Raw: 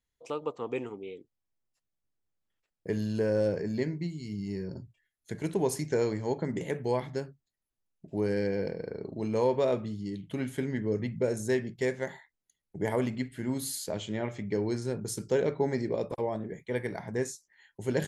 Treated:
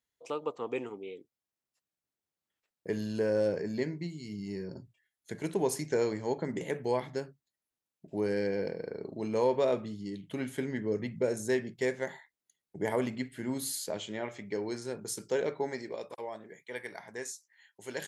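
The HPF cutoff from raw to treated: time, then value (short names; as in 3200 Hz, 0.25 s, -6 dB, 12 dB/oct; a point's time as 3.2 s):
HPF 6 dB/oct
13.68 s 220 Hz
14.27 s 500 Hz
15.52 s 500 Hz
16.01 s 1300 Hz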